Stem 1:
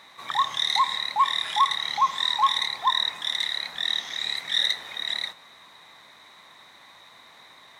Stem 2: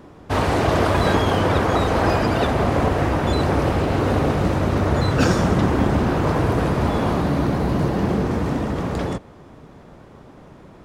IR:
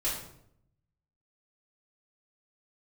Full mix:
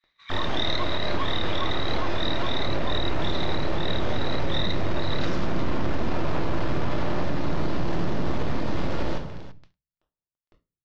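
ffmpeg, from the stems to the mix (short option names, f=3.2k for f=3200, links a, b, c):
-filter_complex "[0:a]highpass=f=1.4k:w=0.5412,highpass=f=1.4k:w=1.3066,volume=-2dB[a];[1:a]asoftclip=type=tanh:threshold=-15dB,acrusher=bits=3:dc=4:mix=0:aa=0.000001,dynaudnorm=f=380:g=13:m=6.5dB,volume=-7dB,asplit=3[b][c][d];[c]volume=-6dB[e];[d]volume=-11dB[f];[2:a]atrim=start_sample=2205[g];[e][g]afir=irnorm=-1:irlink=0[h];[f]aecho=0:1:336:1[i];[a][b][h][i]amix=inputs=4:normalize=0,agate=range=-33dB:threshold=-41dB:ratio=3:detection=peak,lowpass=f=5k:w=0.5412,lowpass=f=5k:w=1.3066,alimiter=limit=-14dB:level=0:latency=1:release=64"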